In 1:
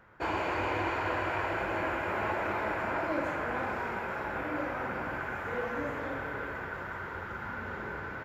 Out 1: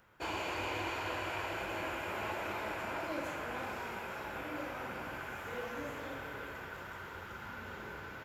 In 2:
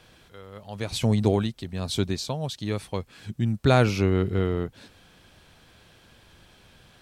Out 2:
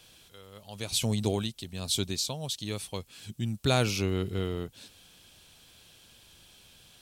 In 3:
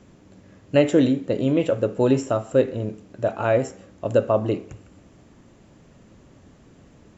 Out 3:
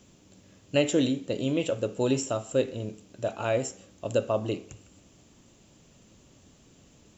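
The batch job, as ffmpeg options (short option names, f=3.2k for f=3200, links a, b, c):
-af "aexciter=amount=2.9:drive=5.9:freq=2.6k,volume=-7dB"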